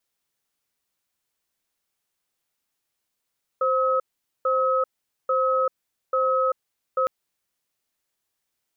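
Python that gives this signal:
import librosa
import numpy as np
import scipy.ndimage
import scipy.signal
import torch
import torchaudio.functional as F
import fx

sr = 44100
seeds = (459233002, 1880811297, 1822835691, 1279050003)

y = fx.cadence(sr, length_s=3.46, low_hz=523.0, high_hz=1280.0, on_s=0.39, off_s=0.45, level_db=-21.5)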